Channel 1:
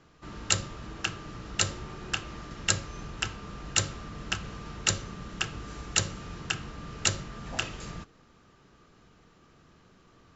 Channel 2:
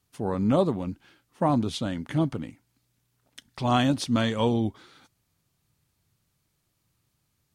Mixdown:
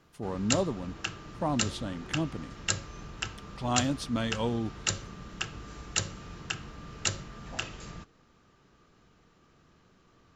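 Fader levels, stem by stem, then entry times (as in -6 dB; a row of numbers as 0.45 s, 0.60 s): -3.5 dB, -6.5 dB; 0.00 s, 0.00 s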